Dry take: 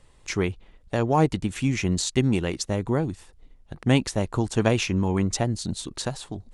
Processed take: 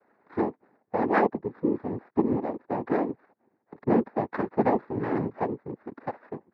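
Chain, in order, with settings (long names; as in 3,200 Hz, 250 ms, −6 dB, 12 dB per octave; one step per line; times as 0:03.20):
linear-phase brick-wall band-pass 200–1,400 Hz
cochlear-implant simulation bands 6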